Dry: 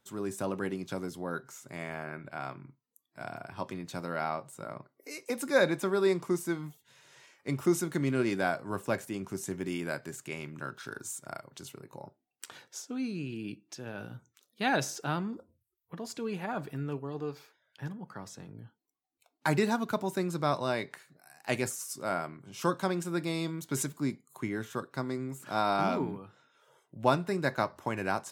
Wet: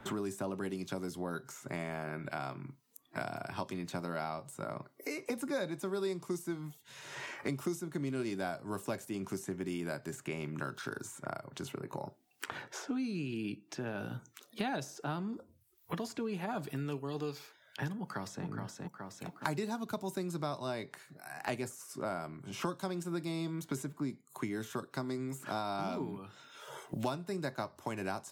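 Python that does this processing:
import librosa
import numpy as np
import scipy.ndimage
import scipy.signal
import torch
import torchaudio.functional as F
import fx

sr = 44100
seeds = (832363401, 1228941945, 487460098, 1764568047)

y = fx.echo_throw(x, sr, start_s=17.99, length_s=0.46, ms=420, feedback_pct=30, wet_db=-7.5)
y = fx.notch(y, sr, hz=500.0, q=12.0)
y = fx.dynamic_eq(y, sr, hz=1900.0, q=0.95, threshold_db=-46.0, ratio=4.0, max_db=-5)
y = fx.band_squash(y, sr, depth_pct=100)
y = F.gain(torch.from_numpy(y), -4.5).numpy()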